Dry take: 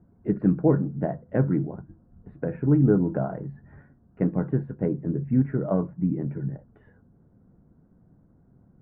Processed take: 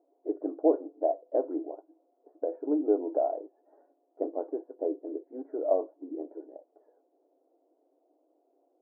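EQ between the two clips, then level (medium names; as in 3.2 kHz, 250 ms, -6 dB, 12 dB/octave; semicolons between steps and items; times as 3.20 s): brick-wall FIR high-pass 280 Hz; four-pole ladder low-pass 760 Hz, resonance 60%; +5.0 dB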